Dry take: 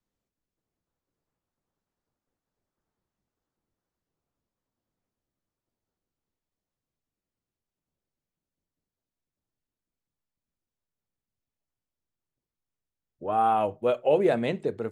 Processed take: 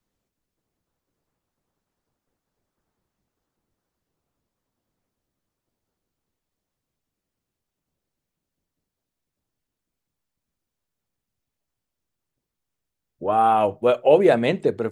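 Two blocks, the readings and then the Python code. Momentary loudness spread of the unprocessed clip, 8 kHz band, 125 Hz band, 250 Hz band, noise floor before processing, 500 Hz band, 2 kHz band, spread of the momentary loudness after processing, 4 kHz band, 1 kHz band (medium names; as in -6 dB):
7 LU, no reading, +5.5 dB, +6.0 dB, under -85 dBFS, +7.0 dB, +7.5 dB, 8 LU, +7.5 dB, +5.5 dB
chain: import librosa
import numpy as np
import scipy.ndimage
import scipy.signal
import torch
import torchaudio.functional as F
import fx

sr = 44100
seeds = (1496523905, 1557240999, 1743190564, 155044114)

y = fx.hpss(x, sr, part='percussive', gain_db=3)
y = y * librosa.db_to_amplitude(5.0)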